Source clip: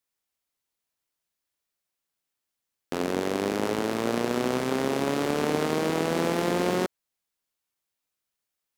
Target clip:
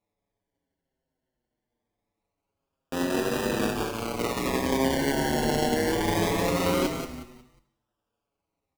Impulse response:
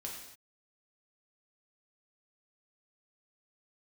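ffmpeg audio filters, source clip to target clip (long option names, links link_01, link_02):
-filter_complex "[0:a]asettb=1/sr,asplit=3[link_01][link_02][link_03];[link_01]atrim=end=3.704[link_04];[link_02]atrim=start=3.7:end=4.19,asetpts=PTS-STARTPTS,afade=type=in:duration=0.004:curve=qsin,afade=type=out:start_time=0.486:duration=0.004:curve=qsin,equalizer=frequency=220:width=0.49:gain=-9.5[link_05];[link_03]atrim=start=4.186[link_06];[link_04][link_05]acrossfade=duration=0.004:curve1=hsin:curve2=qsin[link_07];[link_07][link_06]acrossfade=duration=0.004:curve1=qsin:curve2=hsin,acrusher=samples=28:mix=1:aa=0.000001:lfo=1:lforange=16.8:lforate=0.23,asplit=5[link_08][link_09][link_10][link_11][link_12];[link_09]adelay=181,afreqshift=-57,volume=-6dB[link_13];[link_10]adelay=362,afreqshift=-114,volume=-15.9dB[link_14];[link_11]adelay=543,afreqshift=-171,volume=-25.8dB[link_15];[link_12]adelay=724,afreqshift=-228,volume=-35.7dB[link_16];[link_08][link_13][link_14][link_15][link_16]amix=inputs=5:normalize=0,asplit=2[link_17][link_18];[1:a]atrim=start_sample=2205[link_19];[link_18][link_19]afir=irnorm=-1:irlink=0,volume=-4.5dB[link_20];[link_17][link_20]amix=inputs=2:normalize=0,asplit=2[link_21][link_22];[link_22]adelay=6.5,afreqshift=-0.5[link_23];[link_21][link_23]amix=inputs=2:normalize=1"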